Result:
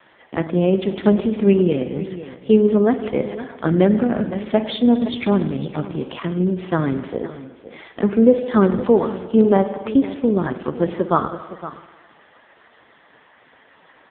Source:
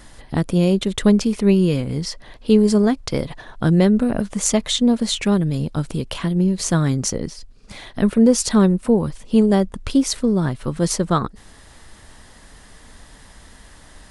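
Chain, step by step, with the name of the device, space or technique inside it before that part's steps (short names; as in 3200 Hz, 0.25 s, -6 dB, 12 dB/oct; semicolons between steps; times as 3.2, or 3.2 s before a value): 8.69–9.21 graphic EQ 125/1000/4000 Hz -7/+5/+10 dB; spring tank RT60 1.5 s, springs 50 ms, chirp 25 ms, DRR 8.5 dB; dynamic EQ 140 Hz, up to +5 dB, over -29 dBFS, Q 0.74; satellite phone (BPF 350–3300 Hz; echo 0.512 s -14.5 dB; gain +4 dB; AMR-NB 5.15 kbps 8000 Hz)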